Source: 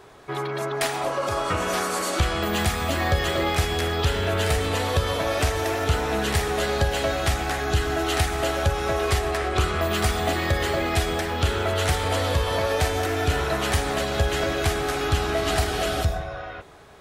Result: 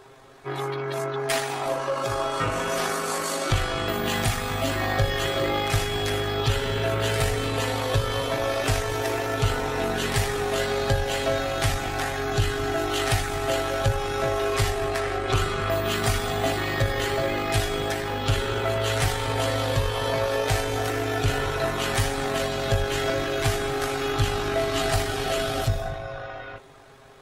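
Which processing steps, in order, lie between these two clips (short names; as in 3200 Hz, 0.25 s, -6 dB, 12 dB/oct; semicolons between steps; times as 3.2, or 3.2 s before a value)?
granular stretch 1.6×, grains 40 ms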